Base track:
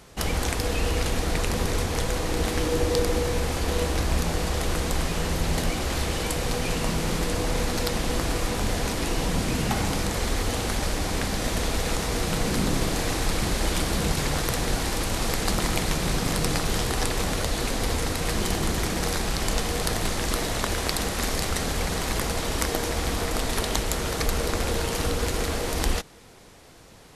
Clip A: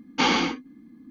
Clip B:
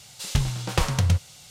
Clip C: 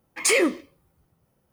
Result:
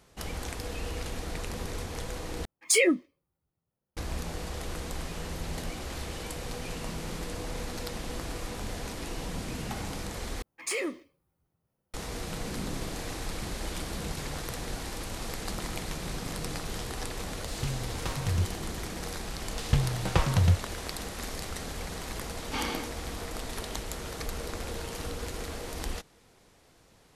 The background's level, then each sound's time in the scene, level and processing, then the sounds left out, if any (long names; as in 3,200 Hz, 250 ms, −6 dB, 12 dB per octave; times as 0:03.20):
base track −10.5 dB
0:02.45: overwrite with C −1.5 dB + noise reduction from a noise print of the clip's start 17 dB
0:10.42: overwrite with C −12 dB
0:17.28: mix in B −7.5 dB + harmonic and percussive parts rebalanced percussive −6 dB
0:19.38: mix in B −1.5 dB + low-pass filter 2,400 Hz 6 dB per octave
0:22.34: mix in A −12.5 dB